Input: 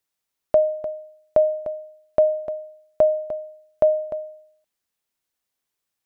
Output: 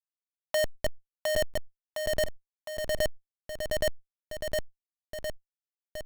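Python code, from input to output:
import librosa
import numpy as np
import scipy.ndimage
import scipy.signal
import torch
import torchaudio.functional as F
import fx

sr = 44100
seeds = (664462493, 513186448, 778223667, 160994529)

p1 = fx.recorder_agc(x, sr, target_db=-15.0, rise_db_per_s=35.0, max_gain_db=30)
p2 = fx.low_shelf(p1, sr, hz=310.0, db=-7.5)
p3 = fx.quant_dither(p2, sr, seeds[0], bits=10, dither='none')
p4 = fx.filter_sweep_highpass(p3, sr, from_hz=880.0, to_hz=330.0, start_s=0.04, end_s=1.6, q=1.8)
p5 = fx.schmitt(p4, sr, flips_db=-12.5)
p6 = p5 + fx.echo_feedback(p5, sr, ms=710, feedback_pct=17, wet_db=-8.5, dry=0)
p7 = fx.env_flatten(p6, sr, amount_pct=70)
y = F.gain(torch.from_numpy(p7), -7.5).numpy()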